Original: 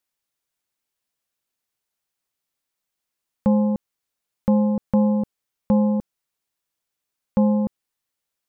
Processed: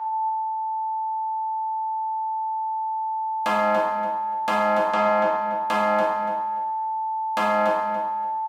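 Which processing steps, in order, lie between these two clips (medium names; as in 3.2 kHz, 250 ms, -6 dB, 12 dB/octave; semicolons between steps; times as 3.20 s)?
fuzz box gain 41 dB, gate -40 dBFS; low-pass that closes with the level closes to 990 Hz, closed at -13.5 dBFS; whistle 880 Hz -30 dBFS; high-pass 650 Hz 12 dB/octave; feedback delay 287 ms, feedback 22%, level -9 dB; two-slope reverb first 0.84 s, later 2.8 s, from -26 dB, DRR -4.5 dB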